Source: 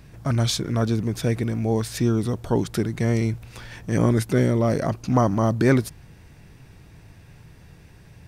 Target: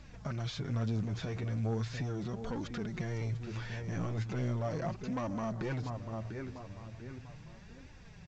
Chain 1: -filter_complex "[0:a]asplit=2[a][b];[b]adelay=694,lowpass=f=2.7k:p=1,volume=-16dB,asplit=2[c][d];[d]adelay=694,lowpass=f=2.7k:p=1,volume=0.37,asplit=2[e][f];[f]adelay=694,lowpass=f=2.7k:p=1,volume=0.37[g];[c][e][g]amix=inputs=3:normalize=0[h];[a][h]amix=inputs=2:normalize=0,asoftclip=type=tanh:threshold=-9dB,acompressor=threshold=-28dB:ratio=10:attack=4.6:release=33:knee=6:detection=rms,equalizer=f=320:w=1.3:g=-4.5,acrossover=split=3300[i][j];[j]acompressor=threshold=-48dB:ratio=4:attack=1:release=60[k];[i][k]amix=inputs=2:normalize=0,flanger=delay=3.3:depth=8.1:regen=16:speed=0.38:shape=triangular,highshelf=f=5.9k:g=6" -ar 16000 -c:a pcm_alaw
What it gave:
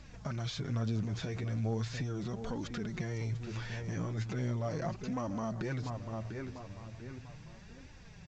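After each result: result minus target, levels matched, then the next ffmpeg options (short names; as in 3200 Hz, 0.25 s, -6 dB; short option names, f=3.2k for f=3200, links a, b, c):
soft clip: distortion -11 dB; 8000 Hz band +3.0 dB
-filter_complex "[0:a]asplit=2[a][b];[b]adelay=694,lowpass=f=2.7k:p=1,volume=-16dB,asplit=2[c][d];[d]adelay=694,lowpass=f=2.7k:p=1,volume=0.37,asplit=2[e][f];[f]adelay=694,lowpass=f=2.7k:p=1,volume=0.37[g];[c][e][g]amix=inputs=3:normalize=0[h];[a][h]amix=inputs=2:normalize=0,asoftclip=type=tanh:threshold=-17dB,acompressor=threshold=-28dB:ratio=10:attack=4.6:release=33:knee=6:detection=rms,equalizer=f=320:w=1.3:g=-4.5,acrossover=split=3300[i][j];[j]acompressor=threshold=-48dB:ratio=4:attack=1:release=60[k];[i][k]amix=inputs=2:normalize=0,flanger=delay=3.3:depth=8.1:regen=16:speed=0.38:shape=triangular,highshelf=f=5.9k:g=6" -ar 16000 -c:a pcm_alaw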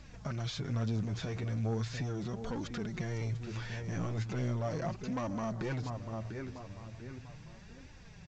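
8000 Hz band +3.0 dB
-filter_complex "[0:a]asplit=2[a][b];[b]adelay=694,lowpass=f=2.7k:p=1,volume=-16dB,asplit=2[c][d];[d]adelay=694,lowpass=f=2.7k:p=1,volume=0.37,asplit=2[e][f];[f]adelay=694,lowpass=f=2.7k:p=1,volume=0.37[g];[c][e][g]amix=inputs=3:normalize=0[h];[a][h]amix=inputs=2:normalize=0,asoftclip=type=tanh:threshold=-17dB,acompressor=threshold=-28dB:ratio=10:attack=4.6:release=33:knee=6:detection=rms,equalizer=f=320:w=1.3:g=-4.5,acrossover=split=3300[i][j];[j]acompressor=threshold=-48dB:ratio=4:attack=1:release=60[k];[i][k]amix=inputs=2:normalize=0,flanger=delay=3.3:depth=8.1:regen=16:speed=0.38:shape=triangular" -ar 16000 -c:a pcm_alaw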